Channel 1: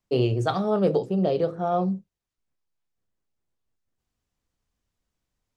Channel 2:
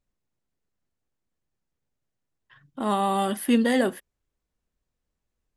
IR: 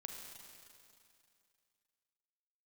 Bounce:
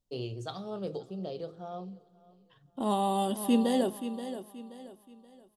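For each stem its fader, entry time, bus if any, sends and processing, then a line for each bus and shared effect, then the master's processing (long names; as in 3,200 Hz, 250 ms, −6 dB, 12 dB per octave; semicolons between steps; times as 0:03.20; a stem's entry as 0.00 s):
−15.5 dB, 0.00 s, send −15.5 dB, echo send −22.5 dB, high shelf with overshoot 2,800 Hz +6.5 dB, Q 1.5; automatic ducking −9 dB, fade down 0.95 s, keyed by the second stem
−3.5 dB, 0.00 s, send −18 dB, echo send −10.5 dB, flat-topped bell 1,700 Hz −12 dB 1.2 octaves; speech leveller 2 s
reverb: on, RT60 2.5 s, pre-delay 34 ms
echo: repeating echo 528 ms, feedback 35%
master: no processing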